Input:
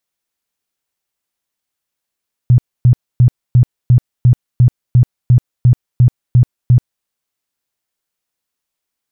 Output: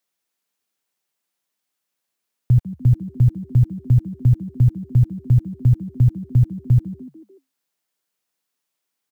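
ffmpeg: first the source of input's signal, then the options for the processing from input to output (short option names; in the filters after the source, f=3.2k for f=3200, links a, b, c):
-f lavfi -i "aevalsrc='0.631*sin(2*PI*123*mod(t,0.35))*lt(mod(t,0.35),10/123)':d=4.55:s=44100"
-filter_complex "[0:a]acrossover=split=110[a][b];[a]acrusher=bits=7:mix=0:aa=0.000001[c];[b]alimiter=limit=-18dB:level=0:latency=1:release=345[d];[c][d]amix=inputs=2:normalize=0,asplit=5[e][f][g][h][i];[f]adelay=147,afreqshift=66,volume=-17dB[j];[g]adelay=294,afreqshift=132,volume=-23.6dB[k];[h]adelay=441,afreqshift=198,volume=-30.1dB[l];[i]adelay=588,afreqshift=264,volume=-36.7dB[m];[e][j][k][l][m]amix=inputs=5:normalize=0"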